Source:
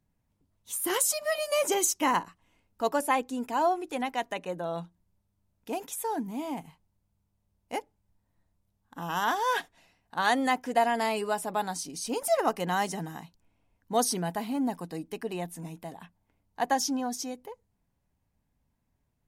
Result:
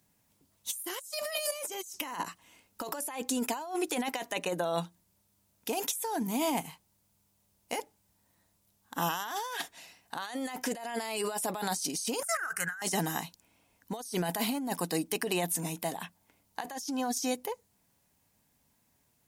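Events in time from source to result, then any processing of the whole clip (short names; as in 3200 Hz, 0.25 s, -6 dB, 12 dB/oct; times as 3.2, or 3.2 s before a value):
12.23–12.82 EQ curve 150 Hz 0 dB, 220 Hz -24 dB, 990 Hz -15 dB, 1500 Hz +15 dB, 2200 Hz -7 dB, 3600 Hz -23 dB, 6100 Hz -6 dB, 8900 Hz 0 dB, 13000 Hz -7 dB
whole clip: HPF 220 Hz 6 dB/oct; high shelf 3300 Hz +11.5 dB; negative-ratio compressor -35 dBFS, ratio -1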